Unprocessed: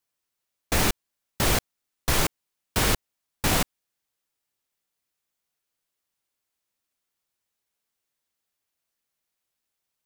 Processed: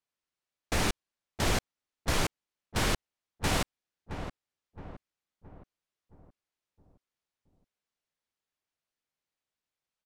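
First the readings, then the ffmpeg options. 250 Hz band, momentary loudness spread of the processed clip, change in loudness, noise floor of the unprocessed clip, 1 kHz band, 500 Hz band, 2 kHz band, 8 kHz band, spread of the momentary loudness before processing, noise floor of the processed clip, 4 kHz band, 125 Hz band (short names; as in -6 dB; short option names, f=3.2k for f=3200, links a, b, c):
-4.5 dB, 16 LU, -7.0 dB, -83 dBFS, -4.5 dB, -4.5 dB, -5.0 dB, -8.0 dB, 7 LU, under -85 dBFS, -5.5 dB, -4.5 dB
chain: -filter_complex "[0:a]adynamicsmooth=sensitivity=5.5:basefreq=7.2k,asplit=2[a][b];[b]adelay=669,lowpass=f=1.2k:p=1,volume=-8.5dB,asplit=2[c][d];[d]adelay=669,lowpass=f=1.2k:p=1,volume=0.49,asplit=2[e][f];[f]adelay=669,lowpass=f=1.2k:p=1,volume=0.49,asplit=2[g][h];[h]adelay=669,lowpass=f=1.2k:p=1,volume=0.49,asplit=2[i][j];[j]adelay=669,lowpass=f=1.2k:p=1,volume=0.49,asplit=2[k][l];[l]adelay=669,lowpass=f=1.2k:p=1,volume=0.49[m];[a][c][e][g][i][k][m]amix=inputs=7:normalize=0,volume=-5dB"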